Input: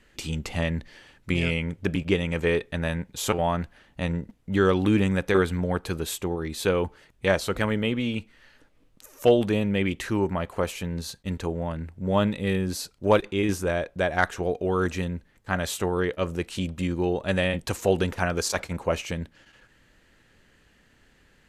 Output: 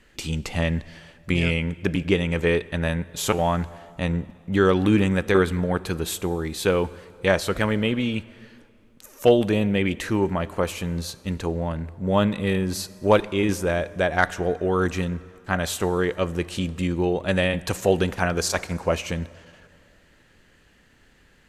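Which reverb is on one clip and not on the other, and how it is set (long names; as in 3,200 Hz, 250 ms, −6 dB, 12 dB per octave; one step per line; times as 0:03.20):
dense smooth reverb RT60 2.4 s, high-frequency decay 0.7×, DRR 17.5 dB
level +2.5 dB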